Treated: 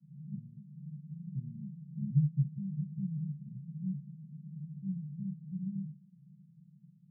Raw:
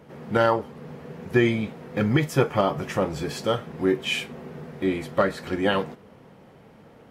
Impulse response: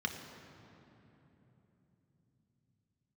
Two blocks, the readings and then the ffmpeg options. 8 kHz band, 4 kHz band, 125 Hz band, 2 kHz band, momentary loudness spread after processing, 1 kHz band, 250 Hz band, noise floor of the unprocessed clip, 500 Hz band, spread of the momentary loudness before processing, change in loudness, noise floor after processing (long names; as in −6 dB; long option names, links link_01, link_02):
below −35 dB, below −40 dB, −4.5 dB, below −40 dB, 15 LU, below −40 dB, −11.5 dB, −51 dBFS, below −40 dB, 16 LU, −13.5 dB, −61 dBFS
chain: -af "asuperpass=centerf=160:order=8:qfactor=2.7,volume=-1dB"